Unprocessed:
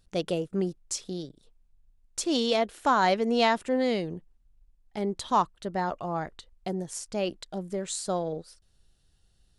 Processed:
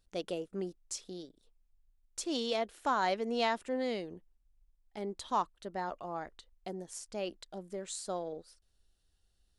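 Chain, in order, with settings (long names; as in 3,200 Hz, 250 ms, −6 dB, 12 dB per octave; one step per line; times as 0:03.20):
parametric band 140 Hz −12 dB 0.66 octaves
level −7.5 dB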